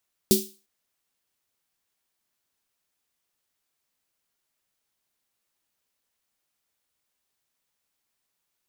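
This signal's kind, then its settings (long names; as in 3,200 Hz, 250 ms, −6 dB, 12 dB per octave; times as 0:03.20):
synth snare length 0.35 s, tones 210 Hz, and 380 Hz, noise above 3,500 Hz, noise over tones −3 dB, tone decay 0.28 s, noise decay 0.35 s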